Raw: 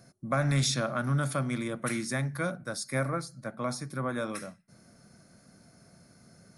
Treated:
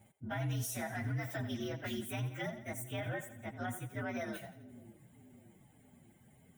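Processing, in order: inharmonic rescaling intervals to 118%; reverb removal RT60 0.55 s; split-band echo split 410 Hz, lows 0.598 s, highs 85 ms, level -14 dB; limiter -27 dBFS, peak gain reduction 9 dB; gain -2.5 dB

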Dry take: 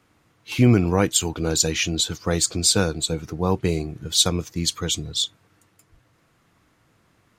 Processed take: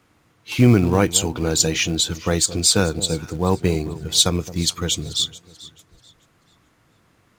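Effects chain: echo with dull and thin repeats by turns 0.218 s, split 820 Hz, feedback 54%, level -14 dB; in parallel at -5.5 dB: short-mantissa float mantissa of 2-bit; on the sum: gain -1.5 dB

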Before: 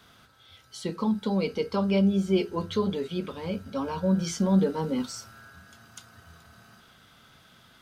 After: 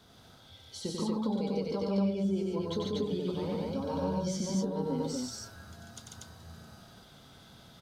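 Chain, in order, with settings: band shelf 1800 Hz -8 dB; compressor 6:1, threshold -33 dBFS, peak gain reduction 15 dB; high shelf 7200 Hz -6 dB; loudspeakers at several distances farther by 32 m -4 dB, 49 m -2 dB, 82 m -1 dB

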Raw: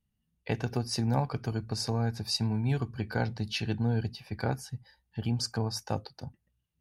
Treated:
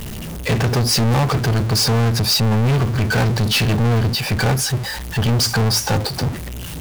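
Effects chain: zero-crossing step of -42 dBFS; sample leveller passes 5; gain +2.5 dB

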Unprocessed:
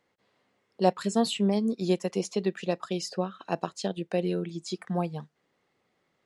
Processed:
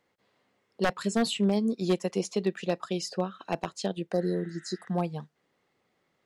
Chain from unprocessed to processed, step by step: wavefolder -16.5 dBFS; spectral repair 4.15–4.85, 1300–3900 Hz after

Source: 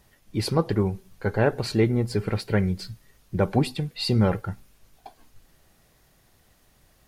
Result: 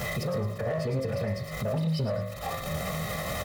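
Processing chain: zero-crossing step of -34 dBFS; on a send at -2 dB: ripple EQ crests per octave 1.1, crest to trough 17 dB + reverb RT60 0.90 s, pre-delay 41 ms; on the sum: speed mistake 44.1 kHz file played as 48 kHz; HPF 110 Hz 12 dB/oct; time stretch by phase-locked vocoder 0.53×; high shelf 2400 Hz -9.5 dB; comb 1.6 ms, depth 97%; in parallel at -10 dB: wavefolder -18 dBFS; on the sum: compressor 5:1, threshold -34 dBFS, peak gain reduction 18.5 dB; thin delay 0.109 s, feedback 34%, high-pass 4200 Hz, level -5 dB; limiter -30.5 dBFS, peak gain reduction 8 dB; gain +8 dB

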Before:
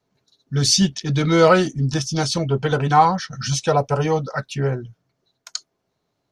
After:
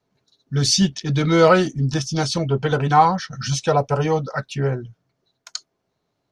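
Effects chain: high shelf 9200 Hz -7 dB

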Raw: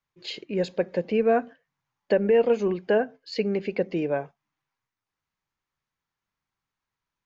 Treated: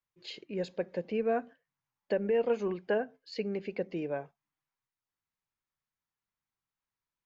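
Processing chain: 2.45–2.94 dynamic EQ 1200 Hz, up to +5 dB, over -38 dBFS, Q 0.83; gain -8.5 dB

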